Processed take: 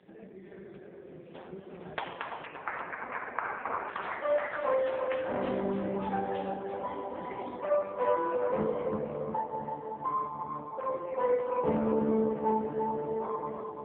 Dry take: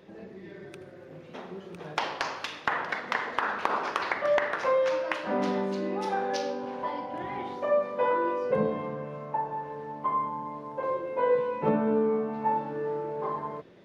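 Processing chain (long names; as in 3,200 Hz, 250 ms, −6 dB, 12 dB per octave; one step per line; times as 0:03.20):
0:02.45–0:03.89: Butterworth low-pass 2,600 Hz 72 dB per octave
tape delay 340 ms, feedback 65%, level −3 dB, low-pass 1,100 Hz
level −2.5 dB
AMR narrowband 5.15 kbit/s 8,000 Hz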